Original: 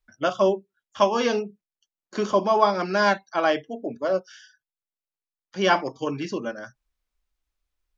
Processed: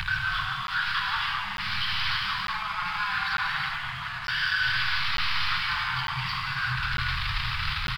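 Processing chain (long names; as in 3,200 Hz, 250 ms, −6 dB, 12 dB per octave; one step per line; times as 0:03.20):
converter with a step at zero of −26 dBFS
volume swells 537 ms
mid-hump overdrive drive 38 dB, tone 2,300 Hz, clips at −7 dBFS
downsampling to 11,025 Hz
on a send: echo through a band-pass that steps 771 ms, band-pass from 180 Hz, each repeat 1.4 octaves, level −11.5 dB
on the sum: downward compressor, threshold −22 dBFS, peak gain reduction 9.5 dB
double-tracking delay 24 ms −13 dB
reverb whose tail is shaped and stops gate 440 ms flat, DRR −2.5 dB
slack as between gear wheels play −40 dBFS
inverse Chebyshev band-stop filter 250–590 Hz, stop band 50 dB
regular buffer underruns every 0.90 s, samples 512, zero, from 0:00.67
level −5 dB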